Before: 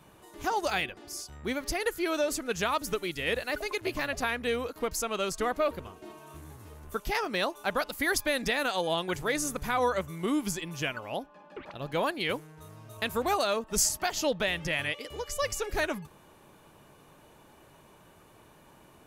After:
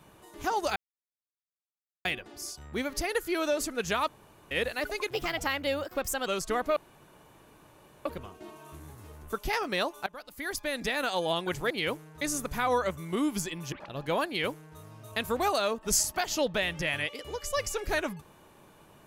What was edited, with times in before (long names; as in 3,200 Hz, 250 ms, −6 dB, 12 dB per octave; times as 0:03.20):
0:00.76: splice in silence 1.29 s
0:02.79–0:03.22: fill with room tone
0:03.82–0:05.17: play speed 117%
0:05.67: splice in room tone 1.29 s
0:07.68–0:08.76: fade in, from −21.5 dB
0:10.83–0:11.58: remove
0:12.13–0:12.64: duplicate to 0:09.32